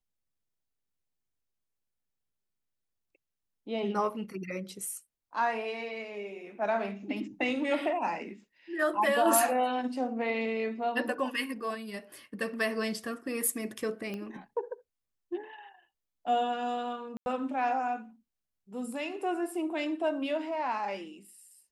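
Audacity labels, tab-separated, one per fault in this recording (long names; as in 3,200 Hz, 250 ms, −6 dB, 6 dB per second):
14.140000	14.140000	click −25 dBFS
17.170000	17.260000	drop-out 91 ms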